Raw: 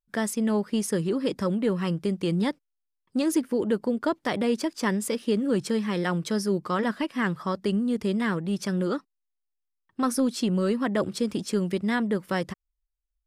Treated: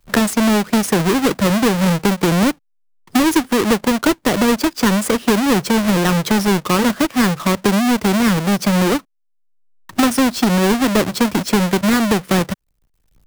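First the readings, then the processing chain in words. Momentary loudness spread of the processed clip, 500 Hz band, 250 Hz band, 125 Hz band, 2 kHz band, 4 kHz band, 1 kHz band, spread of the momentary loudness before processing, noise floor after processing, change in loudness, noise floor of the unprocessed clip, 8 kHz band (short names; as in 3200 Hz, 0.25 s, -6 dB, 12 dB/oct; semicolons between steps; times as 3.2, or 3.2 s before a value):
3 LU, +8.5 dB, +10.5 dB, +11.0 dB, +13.0 dB, +14.5 dB, +13.5 dB, 4 LU, -63 dBFS, +10.5 dB, -81 dBFS, +13.5 dB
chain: half-waves squared off; three-band squash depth 70%; gain +6 dB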